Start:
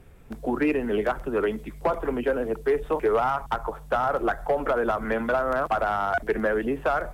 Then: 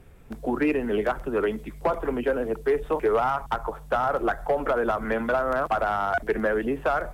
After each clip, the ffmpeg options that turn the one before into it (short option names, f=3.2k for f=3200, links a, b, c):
-af anull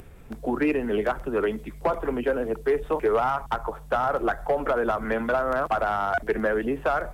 -af "acompressor=mode=upward:threshold=-40dB:ratio=2.5"